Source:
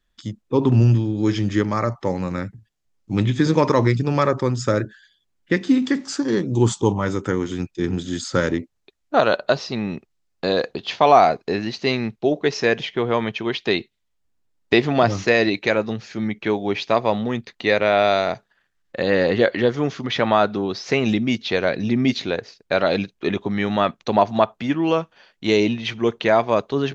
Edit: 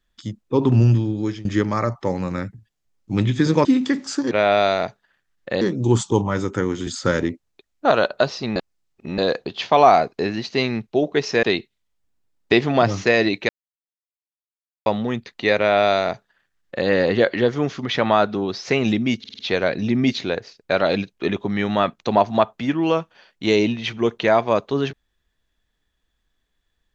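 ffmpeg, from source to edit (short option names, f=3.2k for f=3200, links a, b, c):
-filter_complex "[0:a]asplit=15[a][b][c][d][e][f][g][h][i][j][k][l][m][n][o];[a]atrim=end=1.45,asetpts=PTS-STARTPTS,afade=t=out:st=1.11:d=0.34:silence=0.105925[p];[b]atrim=start=1.45:end=3.652,asetpts=PTS-STARTPTS,afade=t=in:d=0.004:c=hsin:silence=0.105925[q];[c]atrim=start=5.658:end=6.322[r];[d]atrim=start=17.778:end=19.082[s];[e]atrim=start=6.318:end=7.582[t];[f]atrim=start=8.158:end=9.852[u];[g]atrim=start=9.848:end=10.472,asetpts=PTS-STARTPTS,areverse[v];[h]atrim=start=10.468:end=12.722[w];[i]atrim=start=13.638:end=15.7,asetpts=PTS-STARTPTS,afade=t=out:st=2.058:d=0.004:c=hsin[x];[j]atrim=start=15.7:end=17.07,asetpts=PTS-STARTPTS,volume=0[y];[k]atrim=start=17.07:end=21.452,asetpts=PTS-STARTPTS,afade=t=in:d=0.004:c=hsin[z];[l]atrim=start=21.398:end=21.452[aa];[m]atrim=start=21.398:end=21.452[ab];[n]atrim=start=21.398:end=21.452[ac];[o]atrim=start=21.398[ad];[p][q]concat=n=2:v=0:a=1[ae];[ae][r]acrossfade=d=0.004:c1=hsin:c2=hsin[af];[af][s]acrossfade=d=0.004:c1=hsin:c2=hsin[ag];[ag][t]acrossfade=d=0.004:c1=hsin:c2=hsin[ah];[ah][u]acrossfade=d=0.004:c1=hsin:c2=hsin[ai];[ai][v]acrossfade=d=0.004:c1=hsin:c2=hsin[aj];[aj][w]acrossfade=d=0.004:c1=hsin:c2=hsin[ak];[x][y][z]concat=n=3:v=0:a=1[al];[ak][al]acrossfade=d=0.004:c1=hsin:c2=hsin[am];[am][aa]acrossfade=d=0.004:c1=hsin:c2=hsin[an];[an][ab]acrossfade=d=0.004:c1=hsin:c2=hsin[ao];[ao][ac]acrossfade=d=0.004:c1=hsin:c2=hsin[ap];[ap][ad]acrossfade=d=0.004:c1=hsin:c2=hsin"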